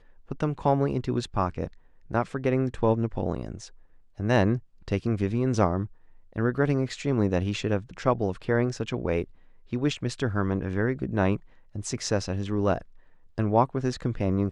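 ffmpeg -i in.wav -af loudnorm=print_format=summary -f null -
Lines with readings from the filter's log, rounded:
Input Integrated:    -27.5 LUFS
Input True Peak:      -7.6 dBTP
Input LRA:             1.9 LU
Input Threshold:     -38.0 LUFS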